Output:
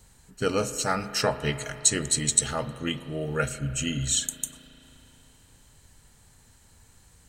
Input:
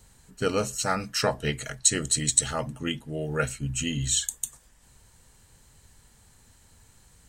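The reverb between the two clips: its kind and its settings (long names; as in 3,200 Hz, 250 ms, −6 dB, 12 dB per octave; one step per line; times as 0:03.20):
spring reverb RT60 3.5 s, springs 35 ms, chirp 50 ms, DRR 12 dB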